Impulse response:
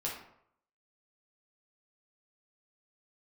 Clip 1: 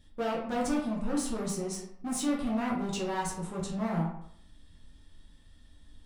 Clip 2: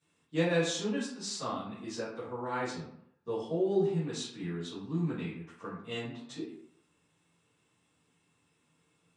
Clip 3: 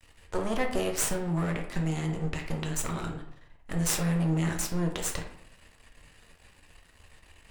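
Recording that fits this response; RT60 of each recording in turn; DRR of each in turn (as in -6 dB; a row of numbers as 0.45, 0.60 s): 1; 0.70, 0.70, 0.70 s; -4.5, -14.0, 2.0 dB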